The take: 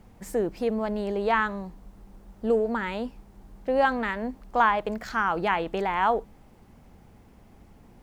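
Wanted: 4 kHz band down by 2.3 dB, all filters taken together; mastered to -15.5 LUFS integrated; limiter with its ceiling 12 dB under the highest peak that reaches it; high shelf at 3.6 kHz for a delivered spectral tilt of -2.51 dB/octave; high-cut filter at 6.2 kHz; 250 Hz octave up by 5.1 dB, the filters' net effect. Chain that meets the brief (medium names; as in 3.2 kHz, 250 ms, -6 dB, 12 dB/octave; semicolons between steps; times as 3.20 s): low-pass 6.2 kHz; peaking EQ 250 Hz +6 dB; treble shelf 3.6 kHz +8.5 dB; peaking EQ 4 kHz -8.5 dB; trim +14.5 dB; peak limiter -6 dBFS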